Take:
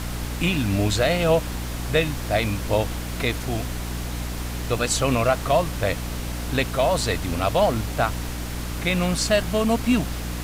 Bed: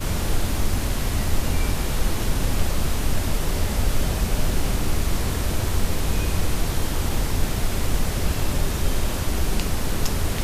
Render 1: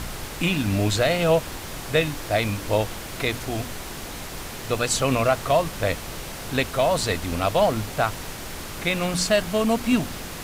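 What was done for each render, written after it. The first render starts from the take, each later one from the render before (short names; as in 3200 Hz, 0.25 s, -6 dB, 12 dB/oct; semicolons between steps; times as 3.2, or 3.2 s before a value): de-hum 60 Hz, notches 5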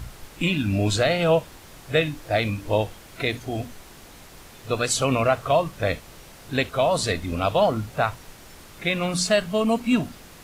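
noise print and reduce 11 dB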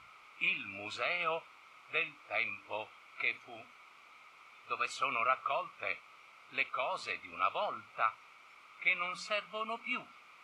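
double band-pass 1700 Hz, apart 0.83 oct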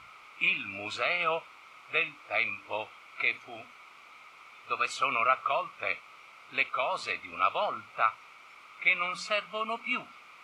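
gain +5.5 dB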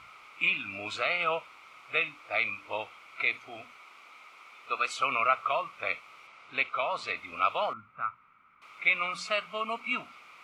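3.77–4.99 HPF 200 Hz; 6.27–7.17 air absorption 50 m; 7.73–8.62 EQ curve 230 Hz 0 dB, 350 Hz -12 dB, 710 Hz -17 dB, 1300 Hz -5 dB, 5300 Hz -30 dB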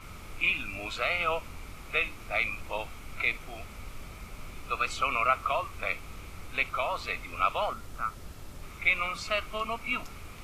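add bed -22 dB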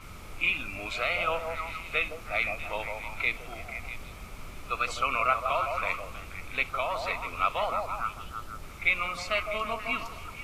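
delay with a stepping band-pass 0.161 s, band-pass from 650 Hz, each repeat 0.7 oct, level -3 dB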